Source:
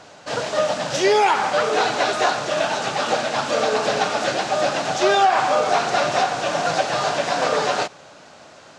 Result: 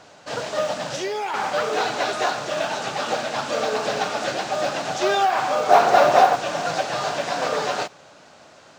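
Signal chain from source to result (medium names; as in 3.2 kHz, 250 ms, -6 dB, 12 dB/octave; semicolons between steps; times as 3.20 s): 0.92–1.34 s: compression 3:1, threshold -23 dBFS, peak gain reduction 8 dB; 5.69–6.36 s: peaking EQ 650 Hz +10 dB 2.6 oct; modulation noise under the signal 35 dB; trim -3.5 dB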